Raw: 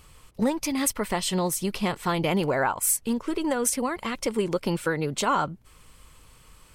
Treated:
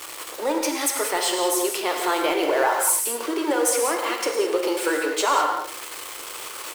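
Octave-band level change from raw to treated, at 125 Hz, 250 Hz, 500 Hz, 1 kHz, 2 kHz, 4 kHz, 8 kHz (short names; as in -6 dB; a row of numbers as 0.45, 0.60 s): under -25 dB, -1.0 dB, +5.0 dB, +5.0 dB, +5.5 dB, +6.0 dB, +4.5 dB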